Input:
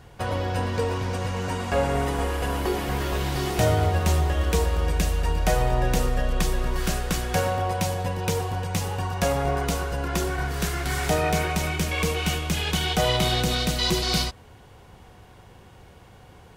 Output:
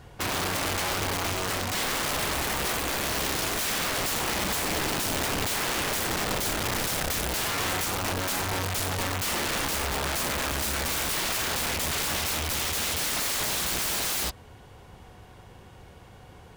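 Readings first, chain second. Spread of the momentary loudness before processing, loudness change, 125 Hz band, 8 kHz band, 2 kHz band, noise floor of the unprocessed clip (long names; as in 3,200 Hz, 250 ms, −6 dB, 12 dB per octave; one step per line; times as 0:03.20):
5 LU, −1.5 dB, −10.5 dB, +5.0 dB, +1.0 dB, −49 dBFS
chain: loose part that buzzes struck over −23 dBFS, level −21 dBFS
wrap-around overflow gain 23.5 dB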